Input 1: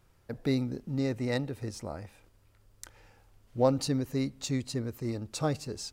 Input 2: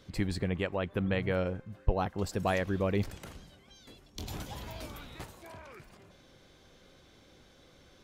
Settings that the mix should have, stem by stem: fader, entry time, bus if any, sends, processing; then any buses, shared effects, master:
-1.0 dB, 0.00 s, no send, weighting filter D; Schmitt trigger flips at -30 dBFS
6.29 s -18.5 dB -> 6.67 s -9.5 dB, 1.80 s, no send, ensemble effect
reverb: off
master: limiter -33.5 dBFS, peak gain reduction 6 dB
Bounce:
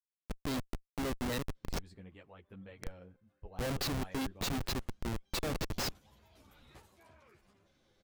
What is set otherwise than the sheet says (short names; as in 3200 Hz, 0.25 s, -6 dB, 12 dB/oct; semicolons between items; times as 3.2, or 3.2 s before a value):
stem 2: entry 1.80 s -> 1.55 s; master: missing limiter -33.5 dBFS, peak gain reduction 6 dB